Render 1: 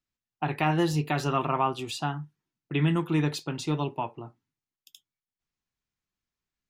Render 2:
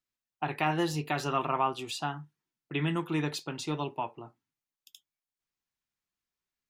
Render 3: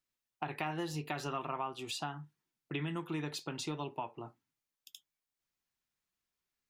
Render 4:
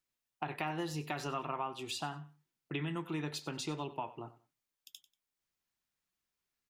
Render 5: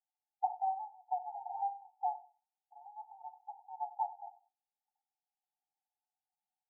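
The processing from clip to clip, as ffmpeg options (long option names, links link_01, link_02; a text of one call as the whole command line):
ffmpeg -i in.wav -af "lowshelf=frequency=240:gain=-8,volume=-1.5dB" out.wav
ffmpeg -i in.wav -af "acompressor=threshold=-38dB:ratio=3,volume=1dB" out.wav
ffmpeg -i in.wav -af "aecho=1:1:94|188:0.15|0.0344" out.wav
ffmpeg -i in.wav -af "asuperpass=centerf=800:order=20:qfactor=4.2,volume=8.5dB" out.wav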